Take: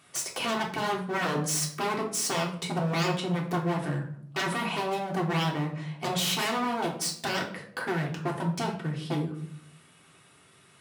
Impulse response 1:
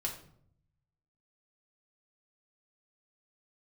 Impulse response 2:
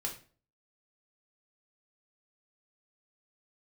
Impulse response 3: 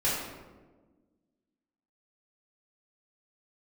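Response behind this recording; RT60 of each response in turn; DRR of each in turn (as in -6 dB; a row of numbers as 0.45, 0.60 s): 1; 0.65, 0.40, 1.3 s; -1.5, -1.0, -10.5 dB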